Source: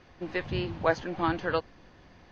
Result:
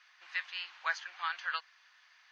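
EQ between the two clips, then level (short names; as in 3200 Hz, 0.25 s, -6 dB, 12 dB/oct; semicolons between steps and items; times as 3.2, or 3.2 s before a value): HPF 1300 Hz 24 dB/oct; 0.0 dB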